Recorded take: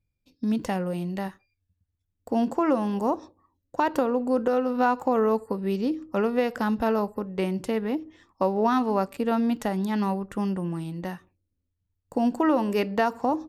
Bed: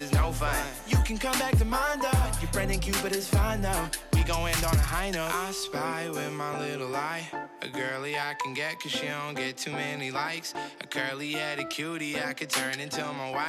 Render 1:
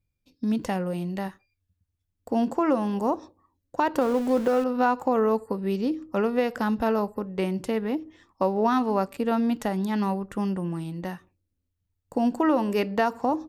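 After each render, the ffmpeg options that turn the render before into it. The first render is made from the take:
-filter_complex "[0:a]asettb=1/sr,asplit=3[a][b][c];[a]atrim=end=4.014[d];[b]atrim=start=4.01:end=4.64,asetpts=PTS-STARTPTS,afade=t=in:d=0.004:c=qsin,afade=t=out:st=0.626:d=0.004:c=qsin,aeval=exprs='val(0)+0.5*0.0224*sgn(val(0))':c=same[e];[c]atrim=start=4.636[f];[d][e]acrossfade=d=0.004:c1=hsin:c2=qsin[g];[g][f]acrossfade=d=0.004:c1=qsin:c2=hsin"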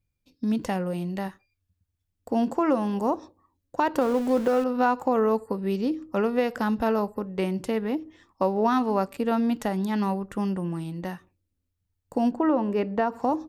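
-filter_complex "[0:a]asplit=3[a][b][c];[a]afade=t=out:st=12.3:d=0.02[d];[b]lowpass=f=1.2k:p=1,afade=t=in:st=12.3:d=0.02,afade=t=out:st=13.12:d=0.02[e];[c]afade=t=in:st=13.12:d=0.02[f];[d][e][f]amix=inputs=3:normalize=0"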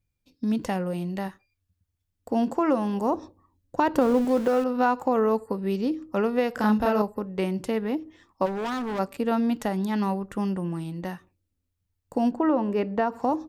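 -filter_complex "[0:a]asettb=1/sr,asplit=3[a][b][c];[a]atrim=end=3.124[d];[b]atrim=start=3.12:end=4.25,asetpts=PTS-STARTPTS,afade=t=in:d=0.004:c=qsin,afade=t=out:st=1.126:d=0.004:c=qsin,lowshelf=f=260:g=8[e];[c]atrim=start=4.246[f];[d][e]acrossfade=d=0.004:c1=hsin:c2=qsin[g];[g][f]acrossfade=d=0.004:c1=qsin:c2=hsin,asettb=1/sr,asplit=3[h][i][j];[h]atrim=end=6.544[k];[i]atrim=start=6.54:end=7.02,asetpts=PTS-STARTPTS,afade=t=in:d=0.004:c=qsin,afade=t=out:st=0.476:d=0.004:c=qsin,asplit=2[l][m];[m]adelay=33,volume=-2dB[n];[l][n]amix=inputs=2:normalize=0,atrim=end_sample=21168[o];[j]atrim=start=7.016[p];[k][o]acrossfade=d=0.004:c1=hsin:c2=qsin[q];[q][p]acrossfade=d=0.004:c1=qsin:c2=hsin,asplit=3[r][s][t];[r]afade=t=out:st=8.45:d=0.02[u];[s]asoftclip=type=hard:threshold=-27.5dB,afade=t=in:st=8.45:d=0.02,afade=t=out:st=8.98:d=0.02[v];[t]afade=t=in:st=8.98:d=0.02[w];[u][v][w]amix=inputs=3:normalize=0"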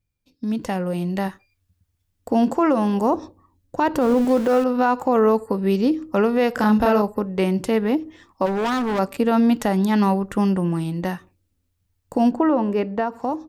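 -af "dynaudnorm=f=110:g=17:m=8dB,alimiter=limit=-9.5dB:level=0:latency=1:release=39"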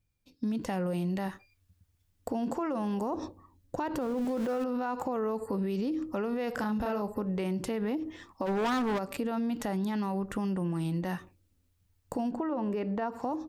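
-af "alimiter=limit=-21dB:level=0:latency=1:release=75,acompressor=threshold=-28dB:ratio=6"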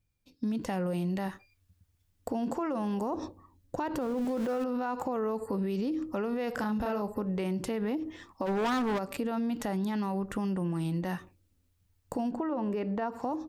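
-af anull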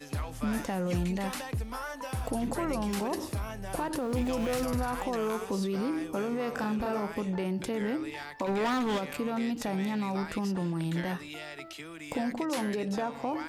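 -filter_complex "[1:a]volume=-10.5dB[a];[0:a][a]amix=inputs=2:normalize=0"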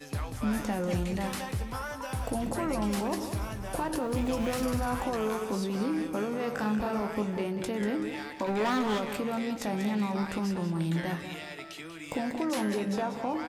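-filter_complex "[0:a]asplit=2[a][b];[b]adelay=19,volume=-11dB[c];[a][c]amix=inputs=2:normalize=0,asplit=2[d][e];[e]aecho=0:1:190|380|570|760:0.335|0.114|0.0387|0.0132[f];[d][f]amix=inputs=2:normalize=0"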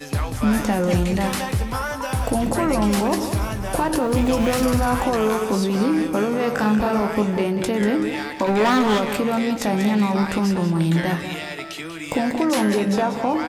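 -af "volume=10.5dB"

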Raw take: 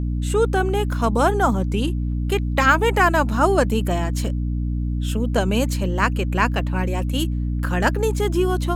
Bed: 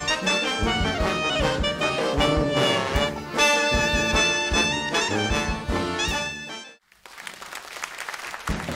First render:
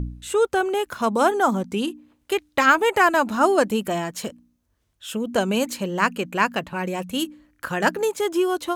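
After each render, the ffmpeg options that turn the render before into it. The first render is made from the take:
-af "bandreject=f=60:t=h:w=4,bandreject=f=120:t=h:w=4,bandreject=f=180:t=h:w=4,bandreject=f=240:t=h:w=4,bandreject=f=300:t=h:w=4"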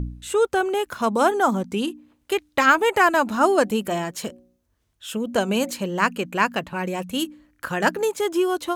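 -filter_complex "[0:a]asettb=1/sr,asplit=3[a][b][c];[a]atrim=end=3.624[d];[b]atrim=start=3.62:end=5.71,asetpts=PTS-STARTPTS,afade=t=in:d=0.004:c=qsin,afade=t=out:st=2.086:d=0.004:c=qsin,bandreject=f=183.6:t=h:w=4,bandreject=f=367.2:t=h:w=4,bandreject=f=550.8:t=h:w=4,bandreject=f=734.4:t=h:w=4[e];[c]atrim=start=5.706[f];[d][e]acrossfade=d=0.004:c1=hsin:c2=qsin[g];[g][f]acrossfade=d=0.004:c1=qsin:c2=hsin"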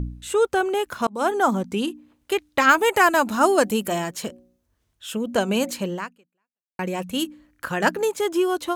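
-filter_complex "[0:a]asettb=1/sr,asplit=3[a][b][c];[a]atrim=end=2.694[d];[b]atrim=start=2.69:end=4.11,asetpts=PTS-STARTPTS,afade=t=in:d=0.004:c=qsin,afade=t=out:st=1.416:d=0.004:c=qsin,highshelf=f=5.6k:g=7.5[e];[c]atrim=start=4.106[f];[d][e]acrossfade=d=0.004:c1=hsin:c2=qsin[g];[g][f]acrossfade=d=0.004:c1=qsin:c2=hsin,asplit=3[h][i][j];[h]atrim=end=1.07,asetpts=PTS-STARTPTS,afade=t=out:st=1.066:d=0.004:c=hsin[k];[i]atrim=start=1.07:end=6.79,asetpts=PTS-STARTPTS,afade=t=in:d=0.4:c=qsin,afade=t=out:st=4.86:d=0.86:c=exp[l];[j]atrim=start=6.79,asetpts=PTS-STARTPTS,afade=t=in:d=0.004:c=hsin[m];[k][l][m]concat=n=3:v=0:a=1"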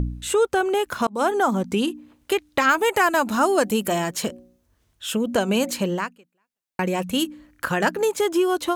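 -filter_complex "[0:a]asplit=2[a][b];[b]alimiter=limit=-15dB:level=0:latency=1:release=274,volume=-1dB[c];[a][c]amix=inputs=2:normalize=0,acompressor=threshold=-23dB:ratio=1.5"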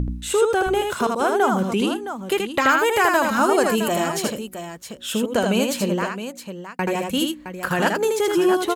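-af "aecho=1:1:79|665:0.631|0.316"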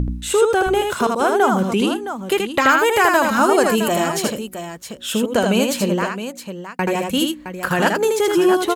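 -af "volume=3dB"

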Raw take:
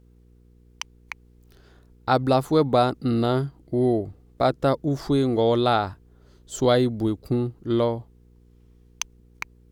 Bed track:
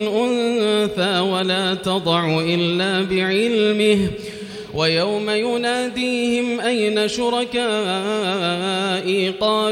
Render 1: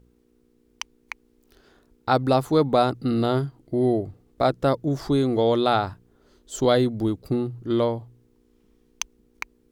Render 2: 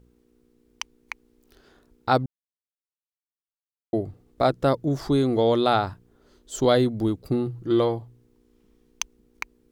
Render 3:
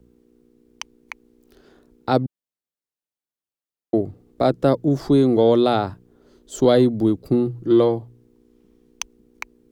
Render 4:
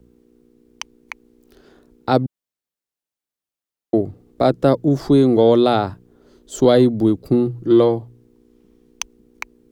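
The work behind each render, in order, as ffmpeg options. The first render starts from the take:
-af "bandreject=f=60:t=h:w=4,bandreject=f=120:t=h:w=4,bandreject=f=180:t=h:w=4"
-filter_complex "[0:a]asettb=1/sr,asplit=3[a][b][c];[a]atrim=end=7.464[d];[b]atrim=start=7.46:end=7.99,asetpts=PTS-STARTPTS,afade=t=in:d=0.004:c=qsin,afade=t=out:st=0.526:d=0.004:c=qsin,aecho=1:1:6:0.49,atrim=end_sample=23373[e];[c]atrim=start=7.986[f];[d][e]acrossfade=d=0.004:c1=hsin:c2=qsin[g];[g][f]acrossfade=d=0.004:c1=qsin:c2=hsin,asplit=3[h][i][j];[h]atrim=end=2.26,asetpts=PTS-STARTPTS,afade=t=out:st=2.256:d=0.004:c=hsin[k];[i]atrim=start=2.26:end=3.93,asetpts=PTS-STARTPTS,volume=0[l];[j]atrim=start=3.93,asetpts=PTS-STARTPTS,afade=t=in:d=0.004:c=hsin[m];[k][l][m]concat=n=3:v=0:a=1"
-filter_complex "[0:a]acrossover=split=150|590|1800[a][b][c][d];[b]acontrast=81[e];[c]alimiter=limit=-19dB:level=0:latency=1[f];[a][e][f][d]amix=inputs=4:normalize=0"
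-af "volume=2.5dB,alimiter=limit=-3dB:level=0:latency=1"

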